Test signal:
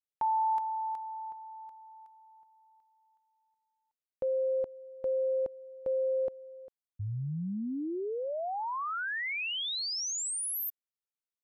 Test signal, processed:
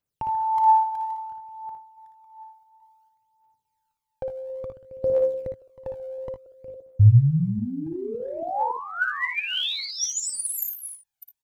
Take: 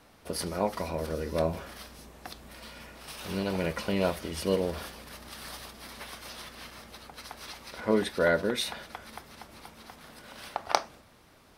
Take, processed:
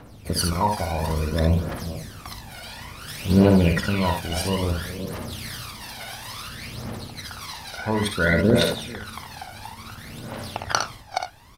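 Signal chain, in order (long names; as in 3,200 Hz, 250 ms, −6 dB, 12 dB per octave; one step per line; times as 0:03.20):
delay that plays each chunk backwards 281 ms, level −13 dB
parametric band 110 Hz +8.5 dB 0.83 octaves
in parallel at +0.5 dB: output level in coarse steps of 17 dB
on the sum: phase shifter 0.58 Hz, delay 1.4 ms, feedback 75%
ambience of single reflections 58 ms −6 dB, 77 ms −12 dB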